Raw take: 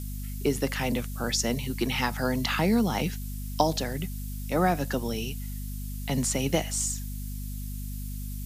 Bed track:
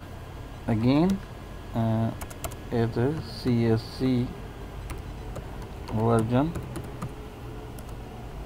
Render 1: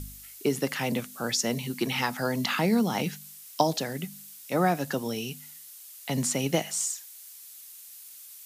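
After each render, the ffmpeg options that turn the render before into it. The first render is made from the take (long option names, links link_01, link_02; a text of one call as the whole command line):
ffmpeg -i in.wav -af "bandreject=frequency=50:width_type=h:width=4,bandreject=frequency=100:width_type=h:width=4,bandreject=frequency=150:width_type=h:width=4,bandreject=frequency=200:width_type=h:width=4,bandreject=frequency=250:width_type=h:width=4" out.wav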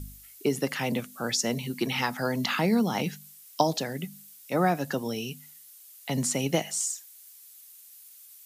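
ffmpeg -i in.wav -af "afftdn=noise_reduction=6:noise_floor=-47" out.wav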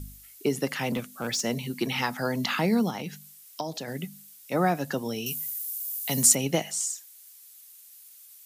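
ffmpeg -i in.wav -filter_complex "[0:a]asettb=1/sr,asplit=3[link_01][link_02][link_03];[link_01]atrim=end=0.874[link_04];[link_02]atrim=start=0.87:end=1.41,asetpts=PTS-STARTPTS,afade=type=in:duration=0.004:curve=qsin,afade=type=out:start_time=0.536:duration=0.004:curve=qsin,asoftclip=type=hard:threshold=-23.5dB[link_05];[link_03]atrim=start=1.406[link_06];[link_04][link_05]acrossfade=duration=0.004:curve1=hsin:curve2=qsin[link_07];[link_07][link_06]acrossfade=duration=0.004:curve1=qsin:curve2=hsin,asettb=1/sr,asplit=3[link_08][link_09][link_10];[link_08]atrim=end=2.904[link_11];[link_09]atrim=start=2.9:end=3.88,asetpts=PTS-STARTPTS,afade=type=in:duration=0.004:curve=qsin,afade=type=out:start_time=0.976:duration=0.004:curve=qsin,acompressor=threshold=-35dB:ratio=2:attack=3.2:release=140:knee=1:detection=peak[link_12];[link_10]atrim=start=3.876[link_13];[link_11][link_12]acrossfade=duration=0.004:curve1=hsin:curve2=qsin[link_14];[link_14][link_13]acrossfade=duration=0.004:curve1=qsin:curve2=hsin,asettb=1/sr,asplit=3[link_15][link_16][link_17];[link_15]atrim=end=5.264[link_18];[link_16]atrim=start=5.26:end=6.35,asetpts=PTS-STARTPTS,afade=type=in:duration=0.004:curve=qsin,afade=type=out:start_time=1.086:duration=0.004:curve=qsin,aemphasis=mode=production:type=75fm[link_19];[link_17]atrim=start=6.346[link_20];[link_18][link_19]acrossfade=duration=0.004:curve1=hsin:curve2=qsin[link_21];[link_21][link_20]acrossfade=duration=0.004:curve1=qsin:curve2=hsin" out.wav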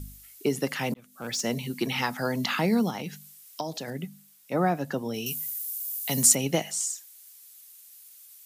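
ffmpeg -i in.wav -filter_complex "[0:a]asettb=1/sr,asplit=3[link_01][link_02][link_03];[link_01]atrim=end=3.904[link_04];[link_02]atrim=start=3.9:end=5.14,asetpts=PTS-STARTPTS,afade=type=in:duration=0.004:curve=qsin,afade=type=out:start_time=1.236:duration=0.004:curve=qsin,highshelf=frequency=2400:gain=-7.5[link_05];[link_03]atrim=start=5.136[link_06];[link_04][link_05]acrossfade=duration=0.004:curve1=hsin:curve2=qsin[link_07];[link_07][link_06]acrossfade=duration=0.004:curve1=qsin:curve2=hsin,asplit=2[link_08][link_09];[link_08]atrim=end=0.94,asetpts=PTS-STARTPTS,afade=type=out:start_time=0.936:duration=0.004:curve=hsin[link_10];[link_09]atrim=start=0.94,asetpts=PTS-STARTPTS,afade=type=in:duration=0.51[link_11];[link_10][link_11]concat=n=2:v=0:a=1" out.wav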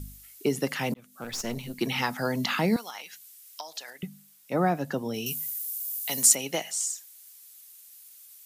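ffmpeg -i in.wav -filter_complex "[0:a]asettb=1/sr,asplit=3[link_01][link_02][link_03];[link_01]atrim=end=1.244[link_04];[link_02]atrim=start=1.24:end=1.81,asetpts=PTS-STARTPTS,afade=type=in:duration=0.004:curve=qsin,afade=type=out:start_time=0.566:duration=0.004:curve=qsin,aeval=exprs='(tanh(17.8*val(0)+0.7)-tanh(0.7))/17.8':channel_layout=same[link_05];[link_03]atrim=start=1.806[link_06];[link_04][link_05]acrossfade=duration=0.004:curve1=hsin:curve2=qsin[link_07];[link_07][link_06]acrossfade=duration=0.004:curve1=qsin:curve2=hsin,asettb=1/sr,asplit=3[link_08][link_09][link_10];[link_08]atrim=end=2.764[link_11];[link_09]atrim=start=2.76:end=4.03,asetpts=PTS-STARTPTS,afade=type=in:duration=0.004:curve=qsin,afade=type=out:start_time=1.266:duration=0.004:curve=qsin,highpass=1100[link_12];[link_10]atrim=start=4.026[link_13];[link_11][link_12]acrossfade=duration=0.004:curve1=hsin:curve2=qsin[link_14];[link_14][link_13]acrossfade=duration=0.004:curve1=qsin:curve2=hsin,asettb=1/sr,asplit=3[link_15][link_16][link_17];[link_15]atrim=end=5.594[link_18];[link_16]atrim=start=5.59:end=6.85,asetpts=PTS-STARTPTS,afade=type=in:duration=0.004:curve=qsin,afade=type=out:start_time=1.256:duration=0.004:curve=qsin,highpass=frequency=640:poles=1[link_19];[link_17]atrim=start=6.846[link_20];[link_18][link_19]acrossfade=duration=0.004:curve1=hsin:curve2=qsin[link_21];[link_21][link_20]acrossfade=duration=0.004:curve1=qsin:curve2=hsin" out.wav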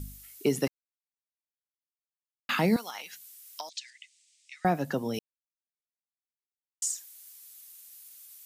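ffmpeg -i in.wav -filter_complex "[0:a]asettb=1/sr,asplit=3[link_01][link_02][link_03];[link_01]atrim=end=3.694[link_04];[link_02]atrim=start=3.69:end=4.65,asetpts=PTS-STARTPTS,afade=type=in:duration=0.004:curve=qsin,afade=type=out:start_time=0.956:duration=0.004:curve=qsin,asuperpass=centerf=4300:order=12:qfactor=0.67[link_05];[link_03]atrim=start=4.646[link_06];[link_04][link_05]acrossfade=duration=0.004:curve1=hsin:curve2=qsin[link_07];[link_07][link_06]acrossfade=duration=0.004:curve1=qsin:curve2=hsin,asplit=5[link_08][link_09][link_10][link_11][link_12];[link_08]atrim=end=0.68,asetpts=PTS-STARTPTS,afade=type=out:start_time=0.676:duration=0.004:curve=hsin[link_13];[link_09]atrim=start=0.68:end=2.49,asetpts=PTS-STARTPTS,volume=0[link_14];[link_10]atrim=start=2.49:end=5.19,asetpts=PTS-STARTPTS,afade=type=in:duration=0.004:curve=hsin,afade=type=out:start_time=2.696:duration=0.004:curve=hsin[link_15];[link_11]atrim=start=5.19:end=6.82,asetpts=PTS-STARTPTS,volume=0[link_16];[link_12]atrim=start=6.82,asetpts=PTS-STARTPTS,afade=type=in:duration=0.004:curve=hsin[link_17];[link_13][link_14][link_15][link_16][link_17]concat=n=5:v=0:a=1" out.wav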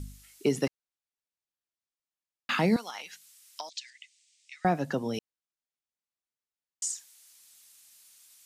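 ffmpeg -i in.wav -af "lowpass=8700" out.wav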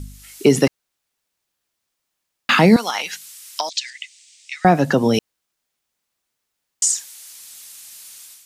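ffmpeg -i in.wav -filter_complex "[0:a]dynaudnorm=framelen=100:gausssize=5:maxgain=10.5dB,asplit=2[link_01][link_02];[link_02]alimiter=limit=-15.5dB:level=0:latency=1:release=87,volume=1dB[link_03];[link_01][link_03]amix=inputs=2:normalize=0" out.wav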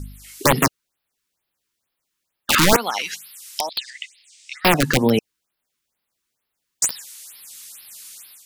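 ffmpeg -i in.wav -af "aeval=exprs='(mod(2.37*val(0)+1,2)-1)/2.37':channel_layout=same,afftfilt=real='re*(1-between(b*sr/1024,580*pow(7800/580,0.5+0.5*sin(2*PI*2.2*pts/sr))/1.41,580*pow(7800/580,0.5+0.5*sin(2*PI*2.2*pts/sr))*1.41))':imag='im*(1-between(b*sr/1024,580*pow(7800/580,0.5+0.5*sin(2*PI*2.2*pts/sr))/1.41,580*pow(7800/580,0.5+0.5*sin(2*PI*2.2*pts/sr))*1.41))':win_size=1024:overlap=0.75" out.wav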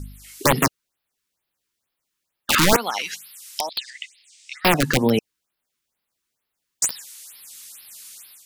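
ffmpeg -i in.wav -af "volume=-1.5dB" out.wav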